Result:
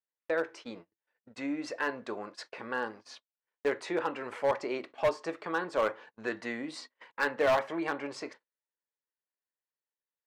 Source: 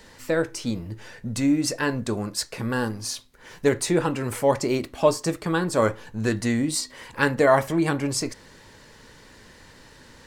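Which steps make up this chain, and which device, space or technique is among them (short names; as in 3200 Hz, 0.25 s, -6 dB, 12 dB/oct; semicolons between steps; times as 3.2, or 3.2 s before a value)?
walkie-talkie (BPF 490–2600 Hz; hard clip -17 dBFS, distortion -12 dB; gate -43 dBFS, range -29 dB); gate -52 dBFS, range -17 dB; gain -4 dB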